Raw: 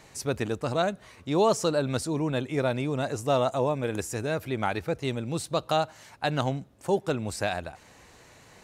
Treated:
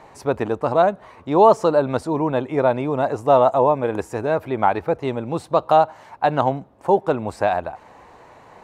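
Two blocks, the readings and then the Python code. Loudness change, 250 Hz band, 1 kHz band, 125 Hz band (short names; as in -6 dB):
+8.5 dB, +5.5 dB, +12.0 dB, +2.0 dB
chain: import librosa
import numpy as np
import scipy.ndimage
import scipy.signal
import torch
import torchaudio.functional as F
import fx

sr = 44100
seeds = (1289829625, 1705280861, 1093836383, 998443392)

y = fx.curve_eq(x, sr, hz=(130.0, 570.0, 950.0, 1400.0, 6400.0), db=(0, 8, 13, 4, -10))
y = y * 10.0 ** (1.5 / 20.0)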